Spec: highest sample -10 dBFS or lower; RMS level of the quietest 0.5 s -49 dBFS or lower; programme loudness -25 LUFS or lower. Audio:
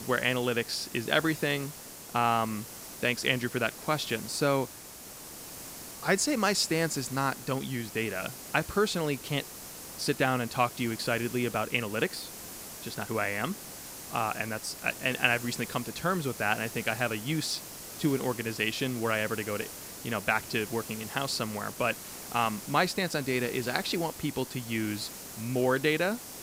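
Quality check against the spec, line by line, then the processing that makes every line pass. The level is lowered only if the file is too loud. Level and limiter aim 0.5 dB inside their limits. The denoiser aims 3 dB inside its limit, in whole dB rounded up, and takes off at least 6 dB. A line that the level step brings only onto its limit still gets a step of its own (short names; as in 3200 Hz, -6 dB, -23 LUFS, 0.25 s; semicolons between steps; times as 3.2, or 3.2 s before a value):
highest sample -8.0 dBFS: fail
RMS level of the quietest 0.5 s -46 dBFS: fail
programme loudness -30.0 LUFS: OK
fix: denoiser 6 dB, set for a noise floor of -46 dBFS; limiter -10.5 dBFS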